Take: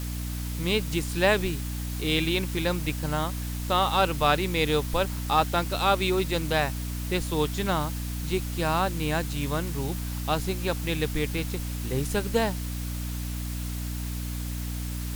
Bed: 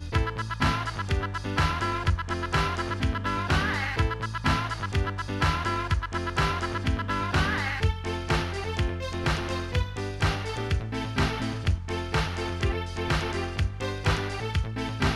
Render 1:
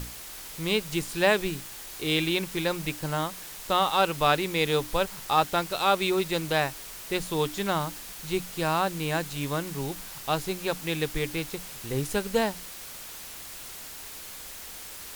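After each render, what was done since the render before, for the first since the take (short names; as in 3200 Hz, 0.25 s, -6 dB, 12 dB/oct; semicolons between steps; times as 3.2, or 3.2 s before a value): notches 60/120/180/240/300 Hz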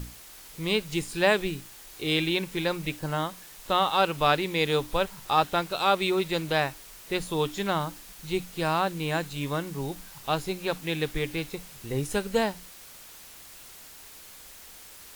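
noise print and reduce 6 dB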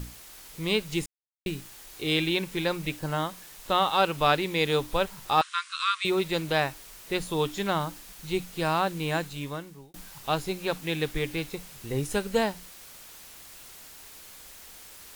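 1.06–1.46 mute; 5.41–6.05 brick-wall FIR band-pass 1000–10000 Hz; 9.17–9.94 fade out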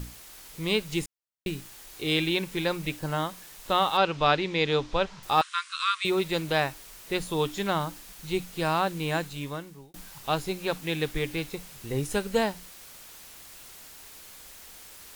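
3.97–5.23 LPF 6100 Hz 24 dB/oct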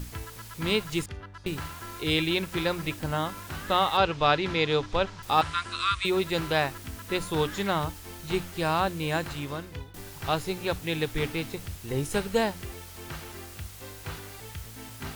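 add bed -13.5 dB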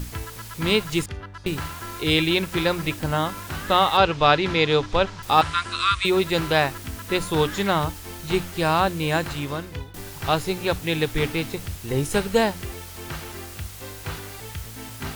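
gain +5.5 dB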